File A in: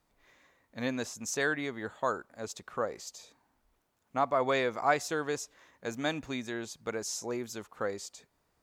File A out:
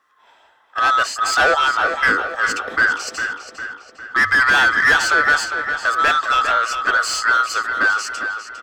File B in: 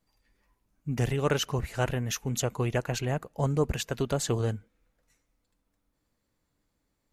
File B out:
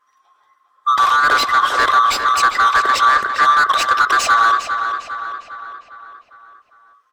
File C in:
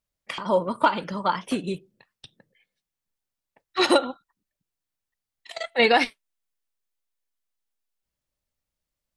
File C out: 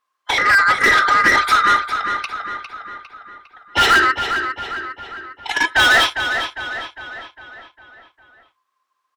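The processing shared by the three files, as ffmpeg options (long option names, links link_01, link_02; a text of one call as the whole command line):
ffmpeg -i in.wav -filter_complex "[0:a]afftfilt=real='real(if(lt(b,960),b+48*(1-2*mod(floor(b/48),2)),b),0)':imag='imag(if(lt(b,960),b+48*(1-2*mod(floor(b/48),2)),b),0)':win_size=2048:overlap=0.75,agate=range=-9dB:threshold=-57dB:ratio=16:detection=peak,bandreject=frequency=50:width_type=h:width=6,bandreject=frequency=100:width_type=h:width=6,adynamicequalizer=threshold=0.01:dfrequency=4800:dqfactor=0.85:tfrequency=4800:tqfactor=0.85:attack=5:release=100:ratio=0.375:range=2.5:mode=boostabove:tftype=bell,asplit=2[link_01][link_02];[link_02]highpass=frequency=720:poles=1,volume=30dB,asoftclip=type=tanh:threshold=-3.5dB[link_03];[link_01][link_03]amix=inputs=2:normalize=0,lowpass=frequency=1900:poles=1,volume=-6dB,equalizer=frequency=160:width_type=o:width=0.52:gain=-12,asplit=2[link_04][link_05];[link_05]adelay=404,lowpass=frequency=4500:poles=1,volume=-7.5dB,asplit=2[link_06][link_07];[link_07]adelay=404,lowpass=frequency=4500:poles=1,volume=0.53,asplit=2[link_08][link_09];[link_09]adelay=404,lowpass=frequency=4500:poles=1,volume=0.53,asplit=2[link_10][link_11];[link_11]adelay=404,lowpass=frequency=4500:poles=1,volume=0.53,asplit=2[link_12][link_13];[link_13]adelay=404,lowpass=frequency=4500:poles=1,volume=0.53,asplit=2[link_14][link_15];[link_15]adelay=404,lowpass=frequency=4500:poles=1,volume=0.53[link_16];[link_06][link_08][link_10][link_12][link_14][link_16]amix=inputs=6:normalize=0[link_17];[link_04][link_17]amix=inputs=2:normalize=0" out.wav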